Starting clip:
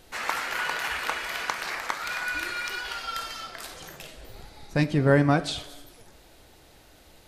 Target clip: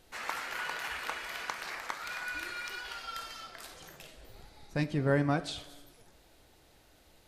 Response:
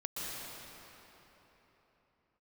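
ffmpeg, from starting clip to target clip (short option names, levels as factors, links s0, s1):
-filter_complex "[0:a]asplit=2[s0][s1];[1:a]atrim=start_sample=2205,asetrate=88200,aresample=44100[s2];[s1][s2]afir=irnorm=-1:irlink=0,volume=0.0531[s3];[s0][s3]amix=inputs=2:normalize=0,volume=0.398"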